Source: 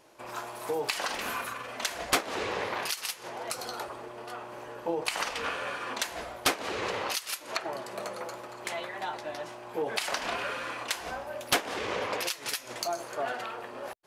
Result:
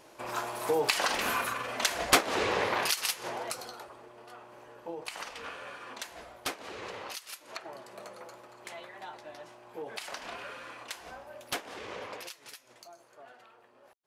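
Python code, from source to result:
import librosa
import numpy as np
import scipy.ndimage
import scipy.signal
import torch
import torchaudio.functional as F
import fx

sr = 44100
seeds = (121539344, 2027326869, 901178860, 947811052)

y = fx.gain(x, sr, db=fx.line((3.31, 3.5), (3.79, -9.0), (12.05, -9.0), (12.91, -20.0)))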